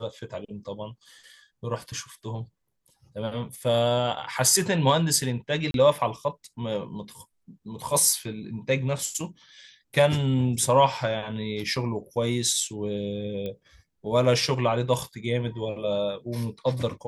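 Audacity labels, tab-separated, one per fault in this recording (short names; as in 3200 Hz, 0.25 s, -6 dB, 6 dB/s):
5.710000	5.740000	gap 32 ms
13.460000	13.460000	pop -22 dBFS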